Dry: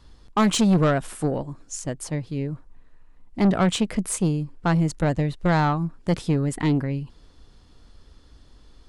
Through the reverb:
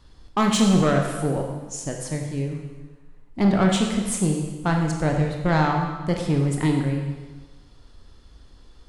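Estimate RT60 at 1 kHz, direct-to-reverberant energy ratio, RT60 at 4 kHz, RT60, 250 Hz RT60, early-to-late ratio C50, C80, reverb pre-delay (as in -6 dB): 1.3 s, 1.5 dB, 1.2 s, 1.3 s, 1.3 s, 4.0 dB, 5.5 dB, 21 ms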